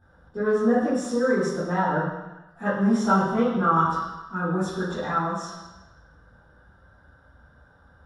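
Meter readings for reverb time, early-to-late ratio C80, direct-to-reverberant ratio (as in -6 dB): 1.1 s, 3.0 dB, -14.0 dB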